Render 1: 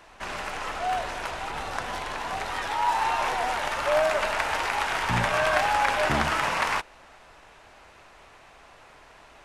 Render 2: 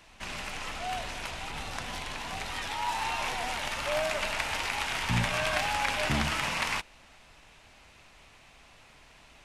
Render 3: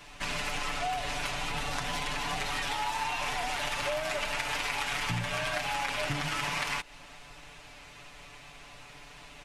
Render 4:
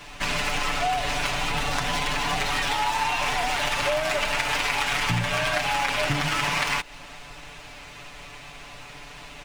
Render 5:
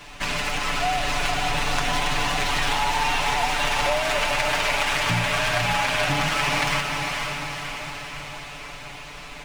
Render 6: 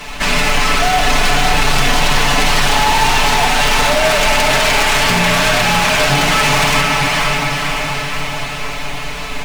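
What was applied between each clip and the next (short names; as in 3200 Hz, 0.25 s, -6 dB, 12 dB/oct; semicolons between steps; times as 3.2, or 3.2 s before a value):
band shelf 760 Hz -8 dB 2.7 oct
comb 6.9 ms, depth 90%; compressor 10:1, threshold -32 dBFS, peak gain reduction 13 dB; gain +3.5 dB
median filter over 3 samples; gain +7.5 dB
diffused feedback echo 0.491 s, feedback 60%, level -4 dB
in parallel at -5 dB: companded quantiser 4-bit; on the sum: sine folder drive 12 dB, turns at -3.5 dBFS; shoebox room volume 990 m³, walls furnished, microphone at 1.5 m; gain -7.5 dB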